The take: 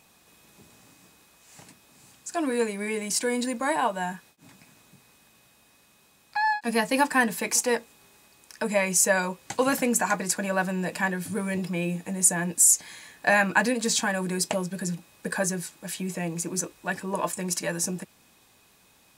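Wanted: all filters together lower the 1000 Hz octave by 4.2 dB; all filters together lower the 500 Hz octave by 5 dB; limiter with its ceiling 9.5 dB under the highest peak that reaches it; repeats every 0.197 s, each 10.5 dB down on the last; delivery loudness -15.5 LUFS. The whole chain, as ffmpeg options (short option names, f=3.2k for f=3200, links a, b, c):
-af "equalizer=f=500:t=o:g=-5,equalizer=f=1k:t=o:g=-3.5,alimiter=limit=-15.5dB:level=0:latency=1,aecho=1:1:197|394|591:0.299|0.0896|0.0269,volume=13dB"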